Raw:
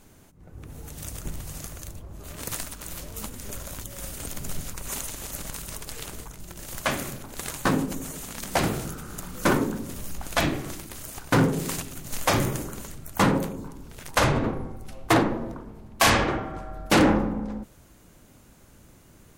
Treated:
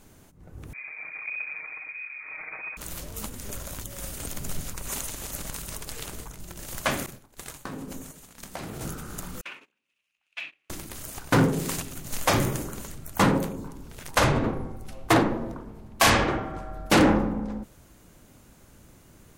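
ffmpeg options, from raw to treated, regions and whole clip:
-filter_complex "[0:a]asettb=1/sr,asplit=3[s0][s1][s2];[s0]atrim=end=0.734[s3];[s1]atrim=start=0.73:end=2.77,asetpts=PTS-STARTPTS,afade=t=in:d=0.004:c=qsin,afade=t=out:st=2.036:d=0.004:c=qsin,aecho=1:1:6.4:0.59,atrim=end_sample=89964,asoftclip=type=hard:threshold=0.0316,lowpass=f=2100:t=q:w=0.5098,lowpass=f=2100:t=q:w=0.6013,lowpass=f=2100:t=q:w=0.9,lowpass=f=2100:t=q:w=2.563,afreqshift=-2500[s4];[s2]atrim=start=2.766[s5];[s3][s4]acrossfade=d=0.004:c1=hsin:c2=qsin[s6];[s6][s5]acrossfade=d=0.004:c1=qsin:c2=hsin,asettb=1/sr,asplit=3[s7][s8][s9];[s7]atrim=end=7.064[s10];[s8]atrim=start=7.06:end=8.81,asetpts=PTS-STARTPTS,afade=t=in:d=0.004:c=qsin,afade=t=out:st=1.746:d=0.004:c=qsin,asplit=2[s11][s12];[s12]adelay=28,volume=0.237[s13];[s11][s13]amix=inputs=2:normalize=0,atrim=end_sample=77175,agate=range=0.0224:threshold=0.0355:ratio=3:release=100:detection=peak,acompressor=threshold=0.0251:ratio=16:attack=3.2:release=140:knee=1:detection=peak[s14];[s9]atrim=start=8.806[s15];[s10][s14]acrossfade=d=0.004:c1=hsin:c2=qsin[s16];[s16][s15]acrossfade=d=0.004:c1=qsin:c2=hsin,asettb=1/sr,asplit=3[s17][s18][s19];[s17]atrim=end=9.414[s20];[s18]atrim=start=9.41:end=10.7,asetpts=PTS-STARTPTS,afade=t=in:d=0.004:c=qsin,afade=t=out:st=1.286:d=0.004:c=qsin,agate=range=0.1:threshold=0.0562:ratio=16:release=100:detection=peak,bandpass=f=2600:t=q:w=6.8[s21];[s19]atrim=start=10.696[s22];[s20][s21]acrossfade=d=0.004:c1=hsin:c2=qsin[s23];[s23][s22]acrossfade=d=0.004:c1=qsin:c2=hsin"

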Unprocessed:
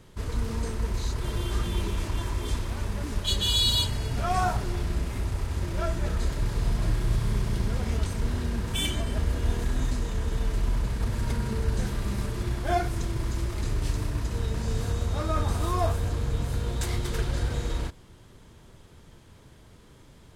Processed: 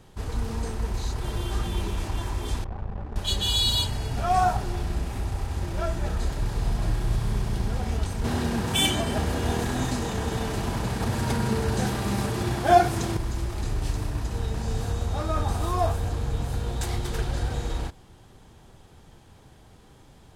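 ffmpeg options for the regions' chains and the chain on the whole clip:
-filter_complex "[0:a]asettb=1/sr,asplit=3[s0][s1][s2];[s0]atrim=end=2.644[s3];[s1]atrim=start=2.64:end=3.16,asetpts=PTS-STARTPTS,afade=t=in:d=0.004:c=qsin,afade=t=out:st=0.516:d=0.004:c=qsin,equalizer=f=270:t=o:w=0.31:g=-13,aeval=exprs='clip(val(0),-1,0.015)':c=same,adynamicsmooth=sensitivity=2.5:basefreq=930[s4];[s2]atrim=start=3.156[s5];[s3][s4]acrossfade=d=0.004:c1=hsin:c2=qsin[s6];[s6][s5]acrossfade=d=0.004:c1=qsin:c2=hsin,asettb=1/sr,asplit=3[s7][s8][s9];[s7]atrim=end=8.244[s10];[s8]atrim=start=8.24:end=13.17,asetpts=PTS-STARTPTS,afade=t=in:d=0.004:c=qsin,afade=t=out:st=4.926:d=0.004:c=qsin,highpass=110,acontrast=74[s11];[s9]atrim=start=13.166[s12];[s10][s11]acrossfade=d=0.004:c1=hsin:c2=qsin[s13];[s13][s12]acrossfade=d=0.004:c1=qsin:c2=hsin,equalizer=f=780:w=7.6:g=11.5,bandreject=f=2100:w=25"

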